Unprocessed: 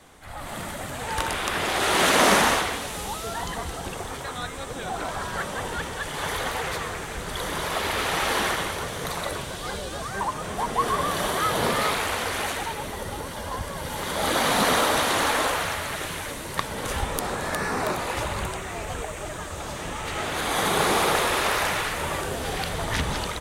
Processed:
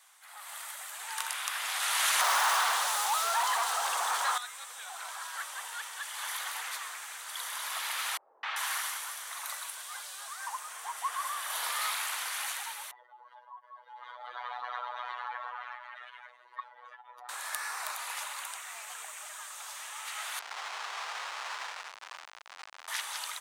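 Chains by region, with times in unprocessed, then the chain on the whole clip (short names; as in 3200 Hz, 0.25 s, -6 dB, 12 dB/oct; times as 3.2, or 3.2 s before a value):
2.21–4.38 bell 2300 Hz -10 dB 1.1 oct + overdrive pedal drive 34 dB, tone 1300 Hz, clips at -6 dBFS
8.17–11.52 HPF 62 Hz + three bands offset in time lows, mids, highs 0.26/0.39 s, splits 450/3800 Hz
12.91–17.29 spectral contrast raised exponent 2.3 + robotiser 123 Hz + air absorption 250 m
20.39–22.88 Schmitt trigger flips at -21.5 dBFS + air absorption 110 m
whole clip: HPF 920 Hz 24 dB/oct; high shelf 6000 Hz +10 dB; gain -8.5 dB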